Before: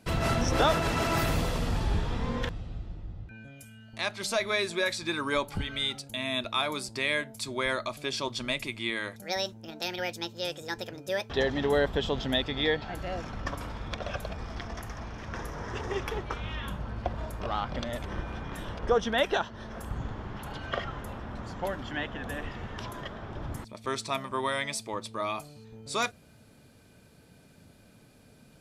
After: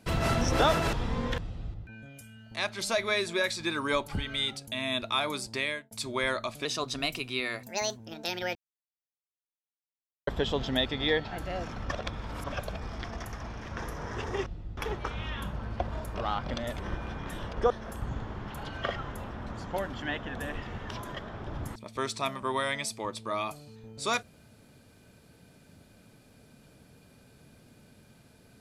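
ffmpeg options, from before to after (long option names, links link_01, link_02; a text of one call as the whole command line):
ffmpeg -i in.wav -filter_complex "[0:a]asplit=13[link_01][link_02][link_03][link_04][link_05][link_06][link_07][link_08][link_09][link_10][link_11][link_12][link_13];[link_01]atrim=end=0.932[link_14];[link_02]atrim=start=2.038:end=2.852[link_15];[link_03]atrim=start=3.158:end=7.33,asetpts=PTS-STARTPTS,afade=type=out:start_time=3.822:duration=0.35[link_16];[link_04]atrim=start=7.33:end=8.074,asetpts=PTS-STARTPTS,afade=type=in:duration=0.004:curve=hsin[link_17];[link_05]atrim=start=8.07:end=9.56,asetpts=PTS-STARTPTS,asetrate=48951,aresample=44100,atrim=end_sample=59197,asetpts=PTS-STARTPTS[link_18];[link_06]atrim=start=9.556:end=10.12,asetpts=PTS-STARTPTS,afade=type=out:start_time=0.56:duration=0.004:curve=hsin[link_19];[link_07]atrim=start=10.12:end=11.84,asetpts=PTS-STARTPTS,volume=0[link_20];[link_08]atrim=start=11.84:end=13.492,asetpts=PTS-STARTPTS,afade=type=in:duration=0.004:curve=hsin[link_21];[link_09]atrim=start=13.488:end=14.092,asetpts=PTS-STARTPTS,areverse[link_22];[link_10]atrim=start=14.088:end=16.032[link_23];[link_11]atrim=start=2.848:end=3.162[link_24];[link_12]atrim=start=16.028:end=18.962[link_25];[link_13]atrim=start=19.588[link_26];[link_14][link_15]acrossfade=duration=0.004:curve1=hsin:curve2=hsin[link_27];[link_16][link_17]concat=n=2:v=0:a=1[link_28];[link_27][link_28]acrossfade=duration=0.004:curve1=hsin:curve2=hsin[link_29];[link_29][link_18]acrossfade=duration=0.004:curve1=hsin:curve2=hsin[link_30];[link_19][link_20][link_21]concat=n=3:v=0:a=1[link_31];[link_30][link_31]acrossfade=duration=0.004:curve1=hsin:curve2=hsin[link_32];[link_32][link_22]acrossfade=duration=0.004:curve1=hsin:curve2=hsin[link_33];[link_33][link_23]acrossfade=duration=0.004:curve1=hsin:curve2=hsin[link_34];[link_34][link_24]acrossfade=duration=0.004:curve1=hsin:curve2=hsin[link_35];[link_35][link_25]acrossfade=duration=0.004:curve1=hsin:curve2=hsin[link_36];[link_36][link_26]acrossfade=duration=0.004:curve1=hsin:curve2=hsin" out.wav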